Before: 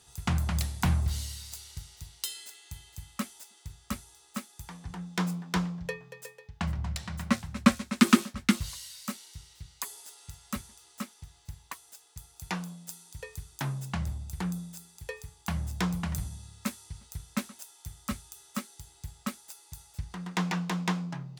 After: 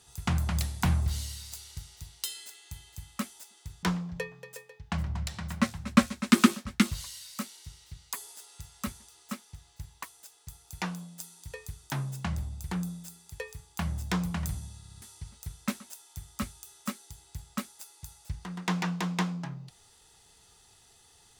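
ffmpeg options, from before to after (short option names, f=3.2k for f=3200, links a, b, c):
-filter_complex "[0:a]asplit=6[a][b][c][d][e][f];[a]atrim=end=3.832[g];[b]atrim=start=5.518:end=16.532[h];[c]atrim=start=16.468:end=16.532[i];[d]atrim=start=16.468:end=16.532[j];[e]atrim=start=16.468:end=16.532[k];[f]atrim=start=16.708[l];[g][h]acrossfade=d=0.004:c1=hsin:c2=hsin[m];[m][i]acrossfade=d=0.004:c1=hsin:c2=hsin[n];[n][j]acrossfade=d=0.004:c1=hsin:c2=hsin[o];[o][k]acrossfade=d=0.004:c1=hsin:c2=hsin[p];[p][l]acrossfade=d=0.004:c1=hsin:c2=hsin"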